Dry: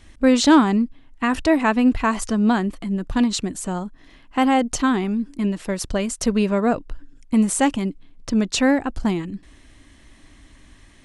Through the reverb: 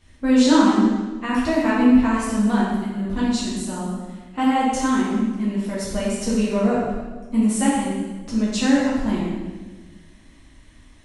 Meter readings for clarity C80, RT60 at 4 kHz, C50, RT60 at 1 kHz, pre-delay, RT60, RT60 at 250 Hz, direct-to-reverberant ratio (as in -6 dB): 2.0 dB, 1.1 s, -1.0 dB, 1.2 s, 5 ms, 1.3 s, 1.7 s, -8.5 dB